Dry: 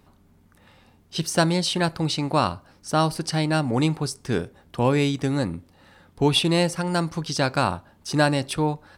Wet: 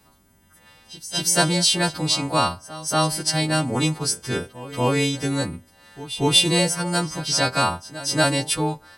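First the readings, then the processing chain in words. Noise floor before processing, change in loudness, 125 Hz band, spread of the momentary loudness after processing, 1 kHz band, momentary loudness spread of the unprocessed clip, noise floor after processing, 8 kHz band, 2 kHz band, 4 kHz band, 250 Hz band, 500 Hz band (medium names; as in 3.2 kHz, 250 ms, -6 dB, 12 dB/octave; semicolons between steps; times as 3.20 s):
-58 dBFS, +2.5 dB, -1.0 dB, 11 LU, +1.0 dB, 8 LU, -56 dBFS, +10.0 dB, +3.0 dB, +6.0 dB, -1.0 dB, -0.5 dB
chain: partials quantised in pitch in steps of 2 st; pre-echo 236 ms -16 dB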